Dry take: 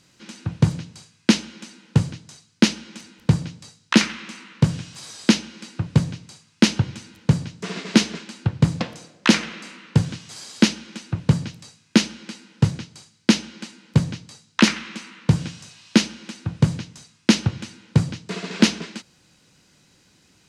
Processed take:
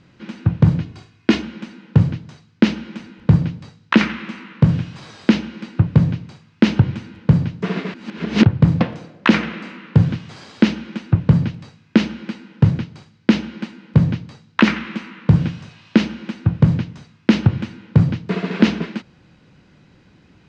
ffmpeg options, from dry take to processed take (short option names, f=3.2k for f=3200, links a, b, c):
-filter_complex "[0:a]asettb=1/sr,asplit=3[a][b][c];[a]atrim=end=0.814[d];[b]atrim=start=0.81:end=1.42,asetpts=PTS-STARTPTS,afade=t=in:d=0.004:c=qsin,afade=t=out:st=0.606:d=0.004:c=qsin,aecho=1:1:2.8:0.55,atrim=end_sample=26901[e];[c]atrim=start=1.416[f];[d][e]acrossfade=d=0.004:c1=hsin:c2=qsin[g];[g][f]acrossfade=d=0.004:c1=qsin:c2=hsin,asplit=3[h][i][j];[h]atrim=end=7.942[k];[i]atrim=start=7.938:end=8.452,asetpts=PTS-STARTPTS,areverse[l];[j]atrim=start=8.448[m];[k][l]acrossfade=d=0.004:c1=hsin:c2=hsin[n];[n][m]acrossfade=d=0.004:c1=hsin:c2=hsin,lowpass=2.5k,lowshelf=f=350:g=6,alimiter=level_in=6.5dB:limit=-1dB:release=50:level=0:latency=1,volume=-1dB"